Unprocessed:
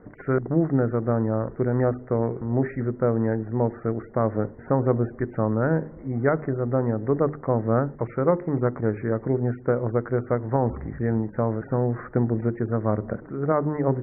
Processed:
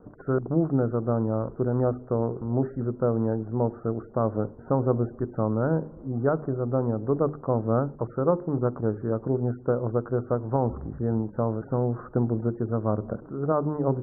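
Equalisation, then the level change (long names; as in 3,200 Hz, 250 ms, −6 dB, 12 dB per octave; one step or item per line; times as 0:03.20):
Butterworth low-pass 1,400 Hz 48 dB per octave
−2.0 dB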